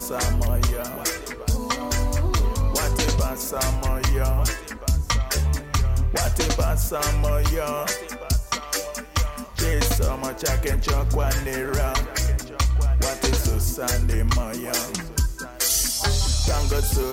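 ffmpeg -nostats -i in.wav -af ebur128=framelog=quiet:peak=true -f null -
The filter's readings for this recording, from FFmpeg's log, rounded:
Integrated loudness:
  I:         -23.6 LUFS
  Threshold: -33.6 LUFS
Loudness range:
  LRA:         1.8 LU
  Threshold: -43.7 LUFS
  LRA low:   -24.7 LUFS
  LRA high:  -22.9 LUFS
True peak:
  Peak:       -9.6 dBFS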